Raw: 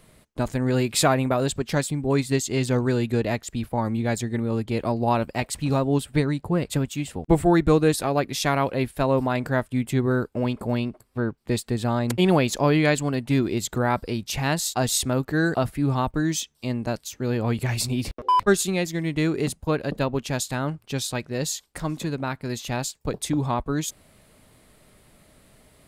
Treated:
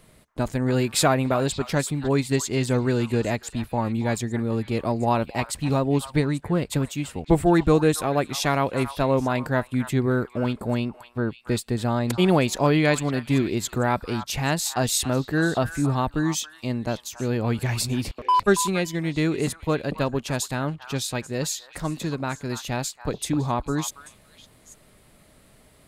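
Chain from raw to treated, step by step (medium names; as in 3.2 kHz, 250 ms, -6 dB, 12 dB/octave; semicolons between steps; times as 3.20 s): 7.90–8.33 s: band-stop 4.6 kHz, Q 6.5; on a send: repeats whose band climbs or falls 279 ms, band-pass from 1.2 kHz, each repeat 1.4 oct, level -9 dB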